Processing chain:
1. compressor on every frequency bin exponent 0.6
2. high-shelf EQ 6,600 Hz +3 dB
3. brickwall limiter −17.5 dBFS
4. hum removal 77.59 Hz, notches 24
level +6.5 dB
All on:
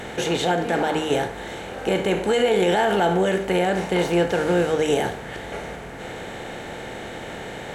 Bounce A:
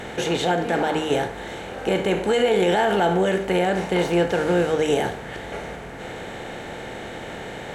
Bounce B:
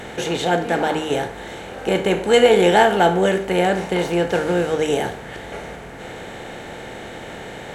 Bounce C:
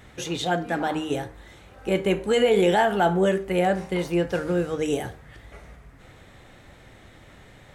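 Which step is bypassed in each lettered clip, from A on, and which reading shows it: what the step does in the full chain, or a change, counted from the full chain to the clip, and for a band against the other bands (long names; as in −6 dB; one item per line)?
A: 2, 8 kHz band −1.5 dB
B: 3, change in crest factor +4.0 dB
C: 1, 8 kHz band −2.0 dB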